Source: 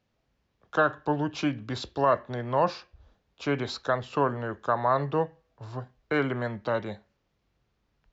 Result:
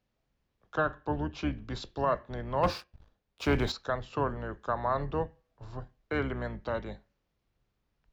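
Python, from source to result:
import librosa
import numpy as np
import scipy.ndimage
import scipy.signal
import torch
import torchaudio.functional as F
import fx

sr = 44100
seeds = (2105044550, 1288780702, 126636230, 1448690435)

y = fx.octave_divider(x, sr, octaves=2, level_db=-2.0)
y = fx.high_shelf(y, sr, hz=6600.0, db=-9.5, at=(0.75, 1.54))
y = fx.leveller(y, sr, passes=2, at=(2.63, 3.72))
y = F.gain(torch.from_numpy(y), -5.5).numpy()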